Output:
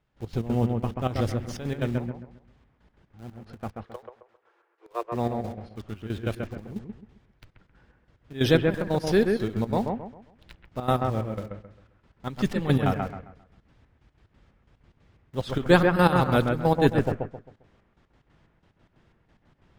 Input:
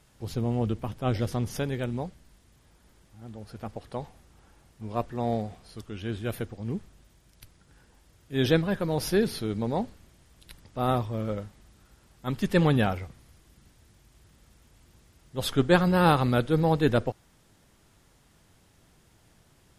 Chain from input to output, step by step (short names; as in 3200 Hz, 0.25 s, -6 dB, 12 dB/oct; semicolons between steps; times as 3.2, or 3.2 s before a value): low-pass opened by the level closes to 2800 Hz, open at -20 dBFS; 3.73–5.12 rippled Chebyshev high-pass 330 Hz, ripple 6 dB; in parallel at -9 dB: bit-crush 7-bit; on the sum: step gate "..x.x.xx" 182 bpm -12 dB; on a send: analogue delay 0.133 s, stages 2048, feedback 32%, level -4 dB